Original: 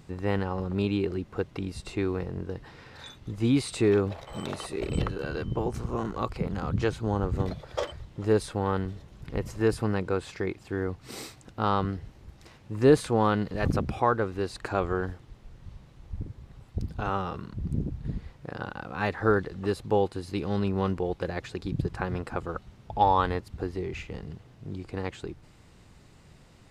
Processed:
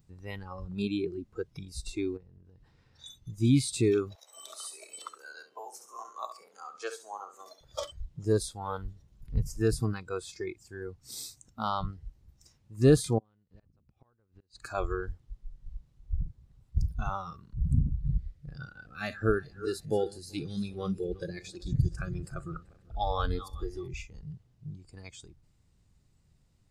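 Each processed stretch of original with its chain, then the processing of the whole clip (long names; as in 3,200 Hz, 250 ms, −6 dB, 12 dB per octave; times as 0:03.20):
0:02.17–0:03.05: high-shelf EQ 6,400 Hz −6 dB + downward compressor, threshold −39 dBFS
0:04.15–0:07.61: high-pass filter 470 Hz 24 dB per octave + dynamic equaliser 3,500 Hz, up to −4 dB, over −51 dBFS, Q 1.3 + flutter between parallel walls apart 11.7 metres, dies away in 0.58 s
0:13.18–0:14.60: gate with flip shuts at −19 dBFS, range −28 dB + downward compressor 10 to 1, threshold −36 dBFS + high-frequency loss of the air 83 metres
0:18.13–0:23.88: feedback delay that plays each chunk backwards 192 ms, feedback 68%, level −11.5 dB + parametric band 930 Hz −14.5 dB 0.28 octaves
whole clip: bass and treble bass +6 dB, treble +9 dB; noise reduction from a noise print of the clip's start 17 dB; low-shelf EQ 120 Hz +7.5 dB; level −4.5 dB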